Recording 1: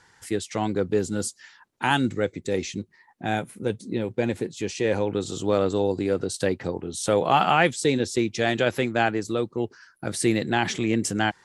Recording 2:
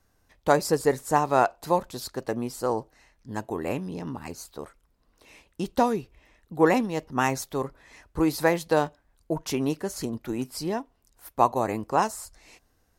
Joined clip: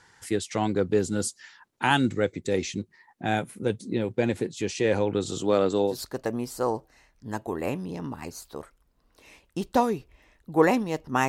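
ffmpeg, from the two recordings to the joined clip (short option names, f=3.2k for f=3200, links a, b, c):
-filter_complex "[0:a]asettb=1/sr,asplit=3[a][b][c];[a]atrim=end=5.394[d];[b]atrim=start=5.39:end=5.99,asetpts=PTS-STARTPTS,afade=t=in:d=0.004:c=qsin,afade=t=out:st=0.596:d=0.004:c=qsin,highpass=140[e];[c]atrim=start=5.986[f];[d][e]acrossfade=d=0.004:c1=hsin:c2=qsin[g];[g][f]acrossfade=d=0.004:c1=qsin:c2=hsin,apad=whole_dur=11.28,atrim=end=11.28,atrim=end=5.99,asetpts=PTS-STARTPTS[h];[1:a]atrim=start=1.88:end=7.31,asetpts=PTS-STARTPTS[i];[h][i]acrossfade=d=0.14:c1=tri:c2=tri"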